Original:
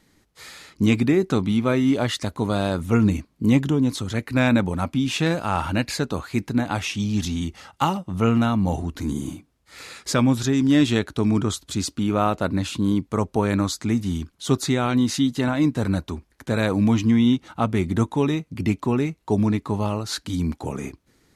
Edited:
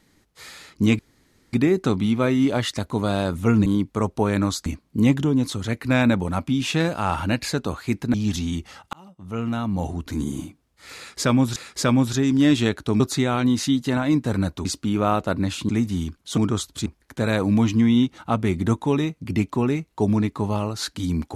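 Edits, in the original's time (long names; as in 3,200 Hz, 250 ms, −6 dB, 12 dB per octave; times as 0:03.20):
0:00.99: splice in room tone 0.54 s
0:06.60–0:07.03: remove
0:07.82–0:09.02: fade in
0:09.86–0:10.45: repeat, 2 plays
0:11.30–0:11.79: swap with 0:14.51–0:16.16
0:12.83–0:13.83: move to 0:03.12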